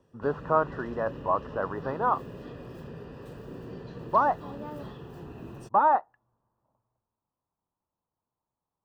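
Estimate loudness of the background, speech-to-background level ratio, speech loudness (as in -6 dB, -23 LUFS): -42.5 LUFS, 15.0 dB, -27.5 LUFS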